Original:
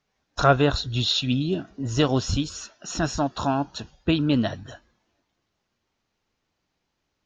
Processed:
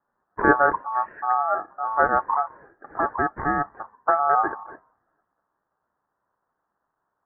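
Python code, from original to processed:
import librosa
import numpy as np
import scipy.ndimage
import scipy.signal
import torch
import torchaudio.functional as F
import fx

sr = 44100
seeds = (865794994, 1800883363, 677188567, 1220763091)

y = x * np.sin(2.0 * np.pi * 1000.0 * np.arange(len(x)) / sr)
y = scipy.signal.sosfilt(scipy.signal.butter(12, 1700.0, 'lowpass', fs=sr, output='sos'), y)
y = fx.low_shelf(y, sr, hz=130.0, db=-6.5)
y = y * librosa.db_to_amplitude(4.5)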